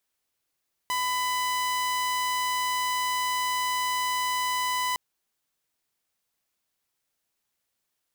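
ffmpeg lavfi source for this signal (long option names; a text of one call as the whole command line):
ffmpeg -f lavfi -i "aevalsrc='0.075*(2*mod(1000*t,1)-1)':duration=4.06:sample_rate=44100" out.wav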